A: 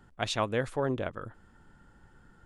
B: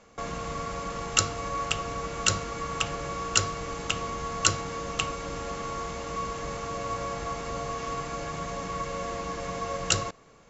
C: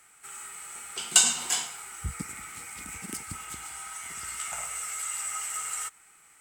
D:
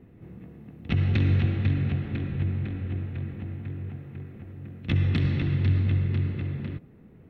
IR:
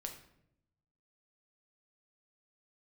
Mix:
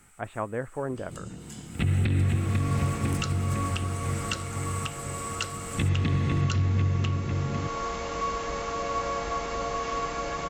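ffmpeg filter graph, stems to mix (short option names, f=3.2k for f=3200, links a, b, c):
-filter_complex "[0:a]lowpass=f=1.9k:w=0.5412,lowpass=f=1.9k:w=1.3066,volume=-2dB,asplit=2[a][b];[1:a]acrossover=split=6100[c][d];[d]acompressor=threshold=-56dB:ratio=4:attack=1:release=60[e];[c][e]amix=inputs=2:normalize=0,equalizer=f=130:w=1.1:g=-8,dynaudnorm=f=340:g=3:m=14dB,adelay=2050,volume=-10.5dB[f];[2:a]acompressor=threshold=-34dB:ratio=12,volume=-2.5dB[g];[3:a]highshelf=f=10k:g=-11.5,adelay=900,volume=2.5dB[h];[b]apad=whole_len=282637[i];[g][i]sidechaincompress=threshold=-44dB:ratio=5:attack=39:release=927[j];[a][f][j][h]amix=inputs=4:normalize=0,alimiter=limit=-16dB:level=0:latency=1:release=343"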